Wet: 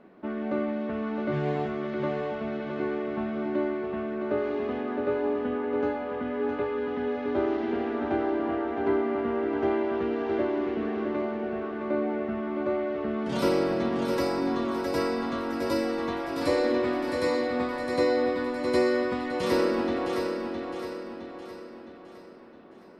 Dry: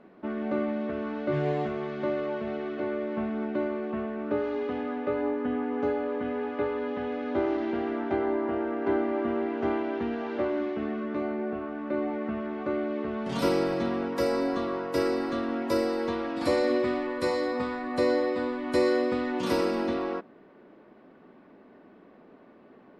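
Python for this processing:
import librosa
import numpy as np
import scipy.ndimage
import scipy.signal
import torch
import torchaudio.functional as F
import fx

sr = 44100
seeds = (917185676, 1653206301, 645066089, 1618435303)

y = fx.echo_feedback(x, sr, ms=663, feedback_pct=47, wet_db=-5.5)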